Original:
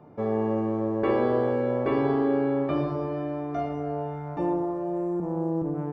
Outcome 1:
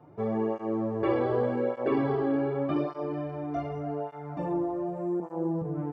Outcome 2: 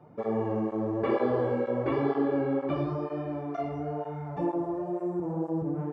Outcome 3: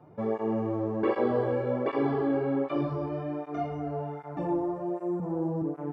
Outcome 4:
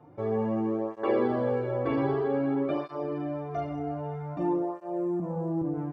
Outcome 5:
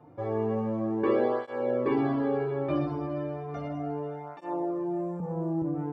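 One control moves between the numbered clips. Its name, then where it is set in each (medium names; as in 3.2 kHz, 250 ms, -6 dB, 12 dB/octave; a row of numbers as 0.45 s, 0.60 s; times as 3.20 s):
cancelling through-zero flanger, nulls at: 0.85 Hz, 2.1 Hz, 1.3 Hz, 0.52 Hz, 0.34 Hz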